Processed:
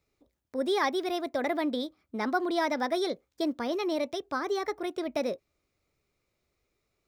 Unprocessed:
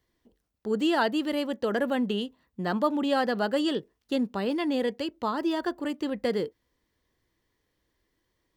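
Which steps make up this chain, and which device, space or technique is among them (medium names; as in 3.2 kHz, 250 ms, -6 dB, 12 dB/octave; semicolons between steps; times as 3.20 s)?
nightcore (tape speed +21%); trim -2.5 dB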